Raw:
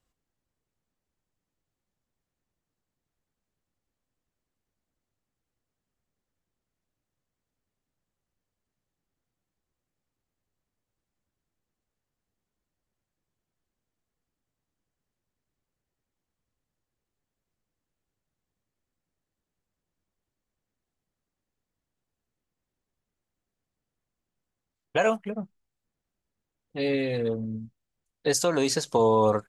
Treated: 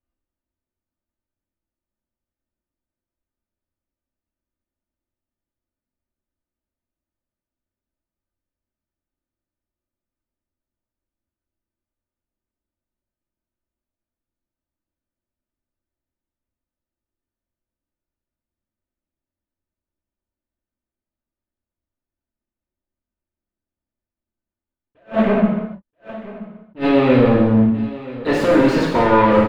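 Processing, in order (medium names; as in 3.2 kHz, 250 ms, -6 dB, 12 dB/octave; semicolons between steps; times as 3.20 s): treble shelf 9.2 kHz +7 dB; comb 3.3 ms, depth 44%; in parallel at -0.5 dB: compressor with a negative ratio -27 dBFS; on the sum: waveshaping leveller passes 5; distance through air 500 m; on a send: delay 979 ms -17.5 dB; on the sum: gated-style reverb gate 370 ms falling, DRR -3 dB; attacks held to a fixed rise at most 300 dB/s; trim -5.5 dB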